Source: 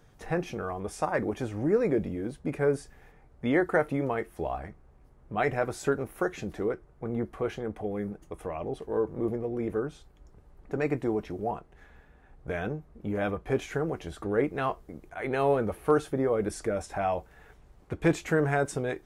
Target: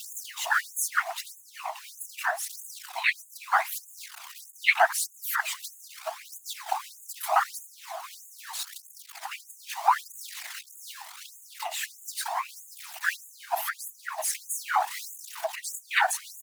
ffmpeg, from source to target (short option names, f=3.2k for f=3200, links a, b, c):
-af "aeval=exprs='val(0)+0.5*0.02*sgn(val(0))':c=same,afwtdn=0.0355,highshelf=f=2.2k:g=10.5,acompressor=threshold=-28dB:ratio=6,afftfilt=real='hypot(re,im)*cos(2*PI*random(0))':imag='hypot(re,im)*sin(2*PI*random(1))':win_size=512:overlap=0.75,asetrate=51156,aresample=44100,aphaser=in_gain=1:out_gain=1:delay=1.4:decay=0.38:speed=0.78:type=triangular,alimiter=level_in=26.5dB:limit=-1dB:release=50:level=0:latency=1,afftfilt=real='re*gte(b*sr/1024,630*pow(6500/630,0.5+0.5*sin(2*PI*1.6*pts/sr)))':imag='im*gte(b*sr/1024,630*pow(6500/630,0.5+0.5*sin(2*PI*1.6*pts/sr)))':win_size=1024:overlap=0.75,volume=-5dB"